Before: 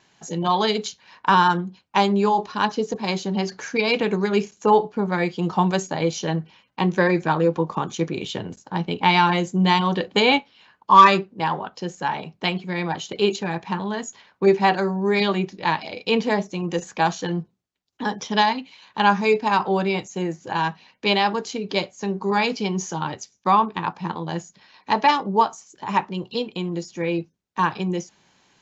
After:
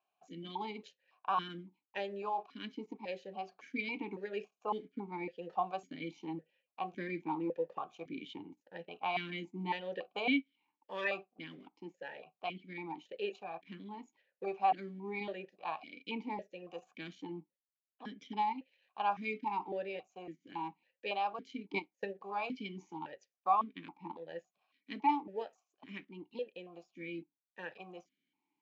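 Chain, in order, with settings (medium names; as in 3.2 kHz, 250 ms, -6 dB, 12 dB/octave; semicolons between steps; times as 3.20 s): companding laws mixed up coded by A; 21.58–22.19 s: transient shaper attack +10 dB, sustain -8 dB; stepped vowel filter 3.6 Hz; trim -5 dB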